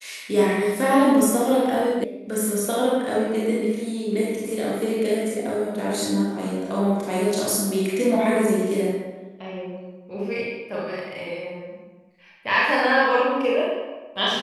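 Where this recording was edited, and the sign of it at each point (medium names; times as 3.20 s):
2.04 s: sound stops dead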